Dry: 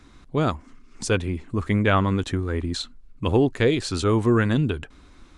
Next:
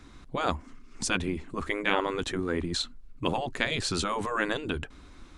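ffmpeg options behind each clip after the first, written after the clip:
ffmpeg -i in.wav -af "afftfilt=real='re*lt(hypot(re,im),0.355)':imag='im*lt(hypot(re,im),0.355)':win_size=1024:overlap=0.75" out.wav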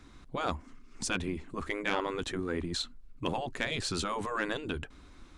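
ffmpeg -i in.wav -af "asoftclip=type=tanh:threshold=-15dB,volume=-3.5dB" out.wav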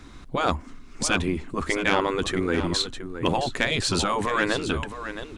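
ffmpeg -i in.wav -af "aecho=1:1:668:0.299,volume=9dB" out.wav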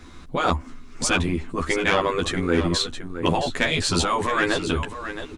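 ffmpeg -i in.wav -filter_complex "[0:a]asplit=2[link_01][link_02];[link_02]adelay=12,volume=-2.5dB[link_03];[link_01][link_03]amix=inputs=2:normalize=0" out.wav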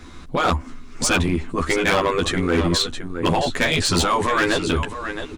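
ffmpeg -i in.wav -af "volume=16.5dB,asoftclip=hard,volume=-16.5dB,volume=3.5dB" out.wav

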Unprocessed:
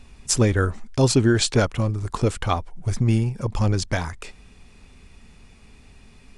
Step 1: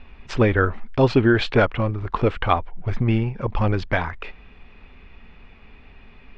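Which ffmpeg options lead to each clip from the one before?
ffmpeg -i in.wav -af "lowpass=frequency=3000:width=0.5412,lowpass=frequency=3000:width=1.3066,equalizer=frequency=120:width=0.41:gain=-7,volume=5.5dB" out.wav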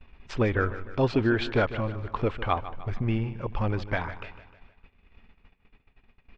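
ffmpeg -i in.wav -af "agate=range=-21dB:threshold=-42dB:ratio=16:detection=peak,aecho=1:1:152|304|456|608|760:0.2|0.0998|0.0499|0.0249|0.0125,volume=-7dB" out.wav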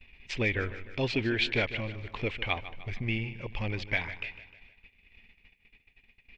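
ffmpeg -i in.wav -af "highshelf=frequency=1700:width_type=q:width=3:gain=8.5,volume=-6dB" out.wav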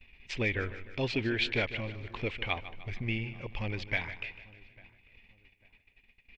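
ffmpeg -i in.wav -filter_complex "[0:a]asplit=2[link_01][link_02];[link_02]adelay=847,lowpass=frequency=1700:poles=1,volume=-23dB,asplit=2[link_03][link_04];[link_04]adelay=847,lowpass=frequency=1700:poles=1,volume=0.34[link_05];[link_01][link_03][link_05]amix=inputs=3:normalize=0,volume=-2dB" out.wav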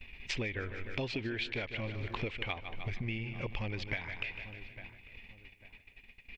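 ffmpeg -i in.wav -af "acompressor=threshold=-40dB:ratio=12,volume=7dB" out.wav

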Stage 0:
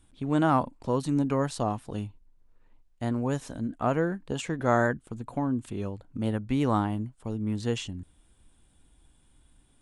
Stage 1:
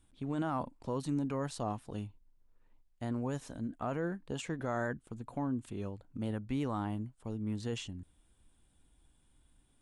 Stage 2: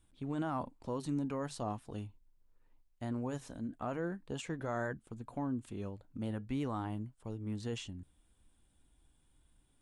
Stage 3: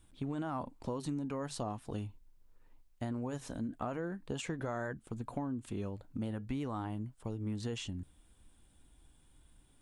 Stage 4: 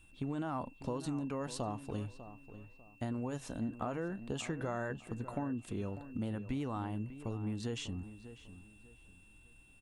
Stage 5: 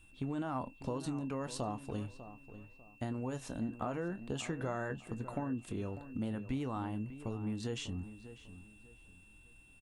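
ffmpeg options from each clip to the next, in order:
ffmpeg -i in.wav -af "alimiter=limit=-18.5dB:level=0:latency=1:release=10,volume=-6.5dB" out.wav
ffmpeg -i in.wav -af "flanger=delay=1.8:depth=2.4:regen=-85:speed=0.42:shape=triangular,volume=2.5dB" out.wav
ffmpeg -i in.wav -af "acompressor=threshold=-40dB:ratio=6,volume=6dB" out.wav
ffmpeg -i in.wav -filter_complex "[0:a]aeval=exprs='val(0)+0.000631*sin(2*PI*2700*n/s)':channel_layout=same,asplit=2[link_01][link_02];[link_02]adelay=597,lowpass=frequency=2500:poles=1,volume=-13dB,asplit=2[link_03][link_04];[link_04]adelay=597,lowpass=frequency=2500:poles=1,volume=0.3,asplit=2[link_05][link_06];[link_06]adelay=597,lowpass=frequency=2500:poles=1,volume=0.3[link_07];[link_01][link_03][link_05][link_07]amix=inputs=4:normalize=0" out.wav
ffmpeg -i in.wav -filter_complex "[0:a]asplit=2[link_01][link_02];[link_02]adelay=23,volume=-13.5dB[link_03];[link_01][link_03]amix=inputs=2:normalize=0" out.wav

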